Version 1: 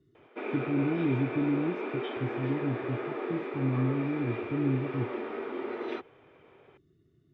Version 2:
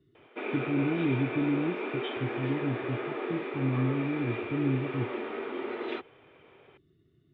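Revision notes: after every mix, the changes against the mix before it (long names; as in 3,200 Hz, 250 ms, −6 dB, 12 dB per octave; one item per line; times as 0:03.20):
master: add low-pass with resonance 3,400 Hz, resonance Q 1.8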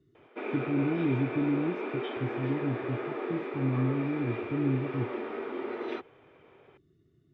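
master: remove low-pass with resonance 3,400 Hz, resonance Q 1.8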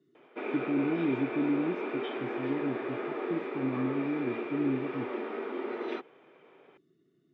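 speech: add high-pass filter 180 Hz 24 dB per octave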